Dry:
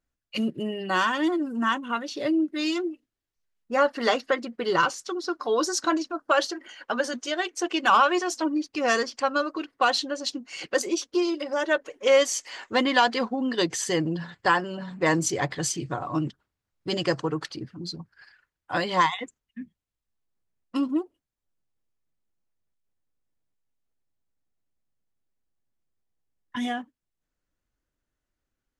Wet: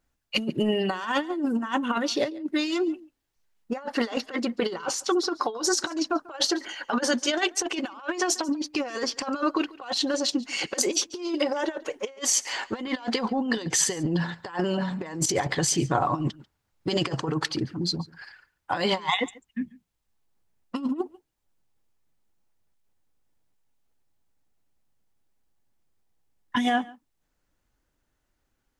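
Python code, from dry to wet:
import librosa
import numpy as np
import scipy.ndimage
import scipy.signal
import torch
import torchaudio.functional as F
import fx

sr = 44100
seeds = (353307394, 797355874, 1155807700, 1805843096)

y = fx.over_compress(x, sr, threshold_db=-29.0, ratio=-0.5)
y = fx.peak_eq(y, sr, hz=850.0, db=5.0, octaves=0.3)
y = y + 10.0 ** (-22.0 / 20.0) * np.pad(y, (int(141 * sr / 1000.0), 0))[:len(y)]
y = y * librosa.db_to_amplitude(3.0)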